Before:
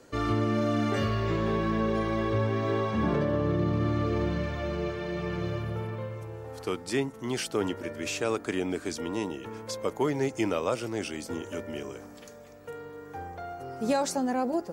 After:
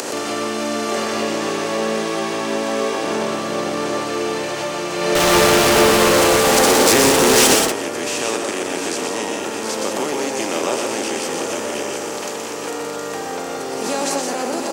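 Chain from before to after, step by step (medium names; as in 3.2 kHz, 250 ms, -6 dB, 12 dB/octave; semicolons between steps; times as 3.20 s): spectral levelling over time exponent 0.4; high-pass 300 Hz 12 dB/octave; delay 716 ms -8 dB; 5.15–7.55 s: fuzz box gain 34 dB, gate -42 dBFS; treble shelf 8.7 kHz -4 dB; upward compressor, threshold -25 dBFS; treble shelf 4.3 kHz +10.5 dB; multi-tap echo 122/172 ms -5/-6.5 dB; swell ahead of each attack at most 40 dB/s; trim -1 dB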